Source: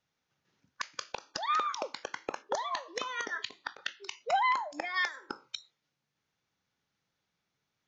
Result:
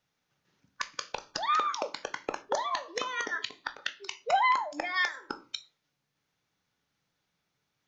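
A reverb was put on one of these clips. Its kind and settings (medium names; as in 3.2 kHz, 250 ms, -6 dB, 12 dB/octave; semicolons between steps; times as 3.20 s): simulated room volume 150 m³, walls furnished, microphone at 0.37 m; trim +2.5 dB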